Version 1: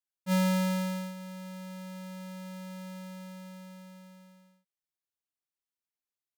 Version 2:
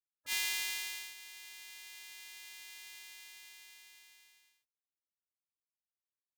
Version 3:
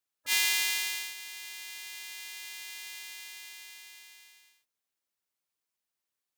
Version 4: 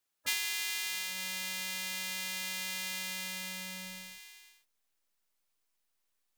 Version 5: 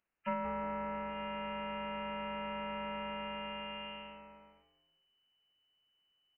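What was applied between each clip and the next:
gate on every frequency bin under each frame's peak −20 dB weak; level +4.5 dB
low-shelf EQ 140 Hz −7.5 dB; level +8 dB
in parallel at −9 dB: slack as between gear wheels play −35.5 dBFS; on the sum: downward compressor 8 to 1, threshold −33 dBFS, peak gain reduction 15 dB; level +4 dB
echo with shifted repeats 176 ms, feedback 37%, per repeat +140 Hz, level −13.5 dB; voice inversion scrambler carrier 3,000 Hz; level +1.5 dB

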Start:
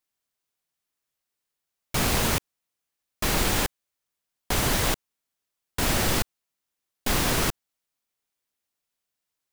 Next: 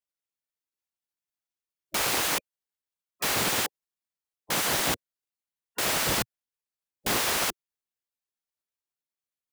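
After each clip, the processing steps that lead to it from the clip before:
gate on every frequency bin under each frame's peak −10 dB weak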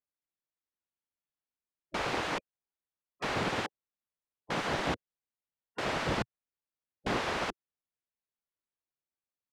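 head-to-tape spacing loss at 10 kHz 27 dB

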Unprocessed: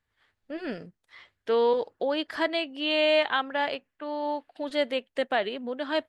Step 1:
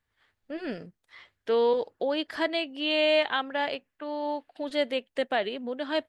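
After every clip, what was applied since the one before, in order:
dynamic equaliser 1,200 Hz, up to −3 dB, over −42 dBFS, Q 1.3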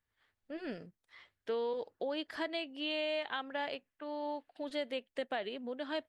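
downward compressor, threshold −25 dBFS, peak gain reduction 6.5 dB
level −7 dB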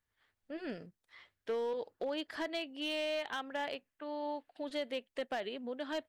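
hard clipping −30 dBFS, distortion −20 dB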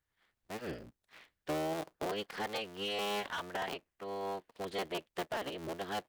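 sub-harmonics by changed cycles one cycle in 3, inverted

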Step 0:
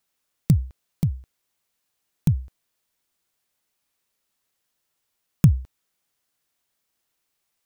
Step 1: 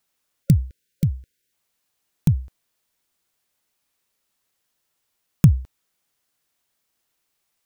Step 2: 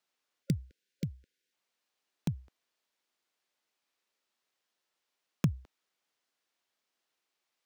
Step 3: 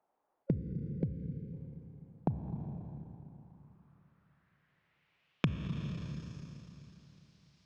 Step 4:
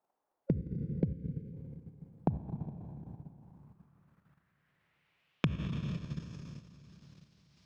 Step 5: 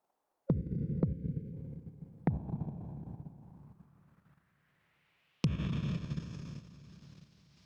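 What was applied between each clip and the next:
time-frequency box erased 0:00.44–0:01.53, 540–1,400 Hz; level +2 dB
three-way crossover with the lows and the highs turned down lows −16 dB, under 220 Hz, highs −12 dB, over 6,300 Hz; level −5 dB
four-comb reverb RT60 3.3 s, combs from 28 ms, DRR 6 dB; downward compressor 2 to 1, threshold −42 dBFS, peak gain reduction 11 dB; low-pass filter sweep 800 Hz → 5,100 Hz, 0:03.30–0:06.33; level +7 dB
output level in coarse steps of 10 dB; level +4.5 dB
sine wavefolder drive 6 dB, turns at −12 dBFS; level −8 dB

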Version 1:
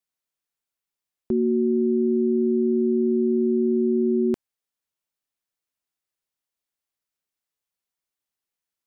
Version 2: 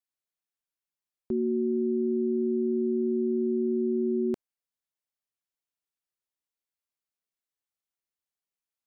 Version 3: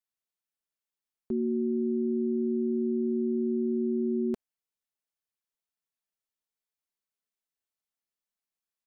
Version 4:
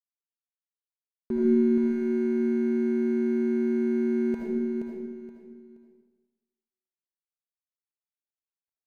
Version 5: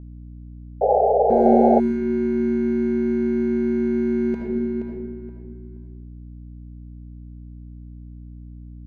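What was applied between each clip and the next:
dynamic equaliser 560 Hz, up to +3 dB, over −33 dBFS, Q 0.99; level −7 dB
comb filter 4.6 ms, depth 37%; level −2.5 dB
running median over 41 samples; repeating echo 474 ms, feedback 27%, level −6 dB; comb and all-pass reverb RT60 1.2 s, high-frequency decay 0.85×, pre-delay 35 ms, DRR −3 dB; level +2 dB
sound drawn into the spectrogram noise, 0:00.81–0:01.80, 400–850 Hz −21 dBFS; mains hum 60 Hz, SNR 16 dB; low-pass that shuts in the quiet parts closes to 1,700 Hz, open at −16.5 dBFS; level +4 dB

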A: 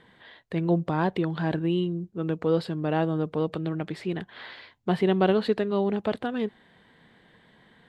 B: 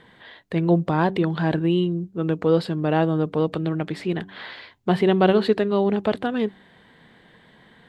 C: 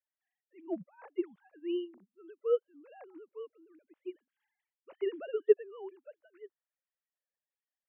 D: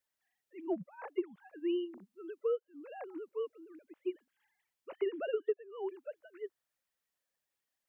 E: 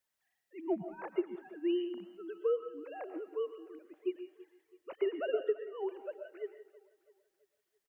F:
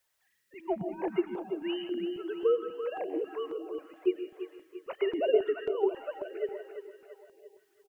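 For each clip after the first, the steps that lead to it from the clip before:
hum removal 96.14 Hz, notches 4; level +5 dB
three sine waves on the formant tracks; expander for the loud parts 2.5 to 1, over −34 dBFS; level −7.5 dB
downward compressor 10 to 1, threshold −37 dBFS, peak gain reduction 20.5 dB; level +7 dB
repeating echo 330 ms, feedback 47%, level −20 dB; convolution reverb RT60 0.35 s, pre-delay 85 ms, DRR 9 dB; level +1.5 dB
repeating echo 340 ms, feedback 49%, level −9 dB; notch on a step sequencer 3.7 Hz 220–1,800 Hz; level +8.5 dB

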